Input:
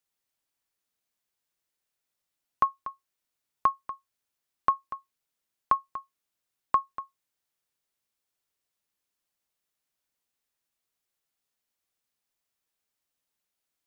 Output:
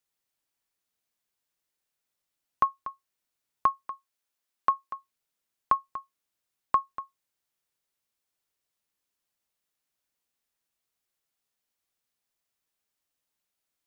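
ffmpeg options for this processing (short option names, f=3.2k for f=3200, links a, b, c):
-filter_complex "[0:a]asettb=1/sr,asplit=3[a][b][c];[a]atrim=end=3.874[d];[b]atrim=start=3.87:end=4.95,asetpts=PTS-STARTPTS,afade=t=in:d=0.004:c=qsin,afade=t=out:st=1.076:d=0.004:c=qsin,lowshelf=f=180:g=-10.5[e];[c]atrim=start=4.946[f];[d][e]acrossfade=d=0.004:c1=hsin:c2=qsin[g];[g][f]acrossfade=d=0.004:c1=qsin:c2=hsin"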